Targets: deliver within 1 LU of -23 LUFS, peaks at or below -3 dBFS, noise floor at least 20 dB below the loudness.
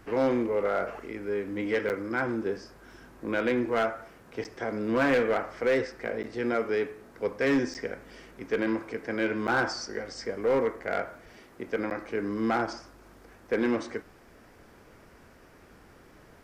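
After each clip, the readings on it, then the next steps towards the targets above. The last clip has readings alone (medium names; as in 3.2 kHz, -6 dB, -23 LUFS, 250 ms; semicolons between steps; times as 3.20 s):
clipped samples 0.9%; clipping level -19.5 dBFS; dropouts 6; longest dropout 9.1 ms; loudness -29.5 LUFS; peak level -19.5 dBFS; loudness target -23.0 LUFS
-> clip repair -19.5 dBFS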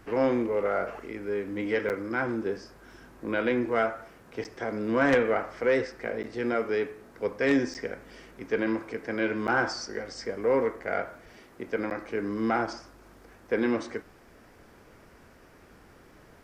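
clipped samples 0.0%; dropouts 6; longest dropout 9.1 ms
-> interpolate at 1.89/4.44/6.23/7.74/9.47/11.90 s, 9.1 ms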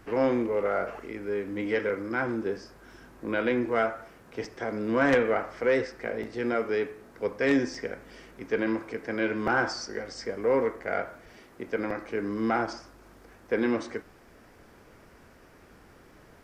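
dropouts 0; loudness -29.0 LUFS; peak level -10.5 dBFS; loudness target -23.0 LUFS
-> trim +6 dB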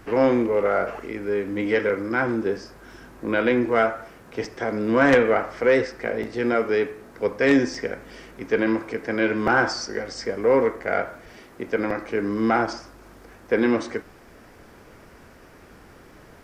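loudness -23.0 LUFS; peak level -4.5 dBFS; noise floor -49 dBFS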